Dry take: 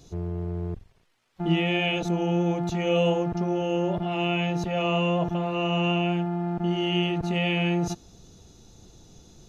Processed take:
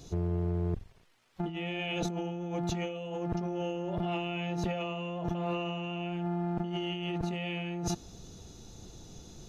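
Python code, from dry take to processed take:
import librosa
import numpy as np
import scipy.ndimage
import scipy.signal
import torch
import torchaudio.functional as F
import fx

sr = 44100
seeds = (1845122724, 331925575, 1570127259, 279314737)

y = fx.over_compress(x, sr, threshold_db=-31.0, ratio=-1.0)
y = F.gain(torch.from_numpy(y), -3.0).numpy()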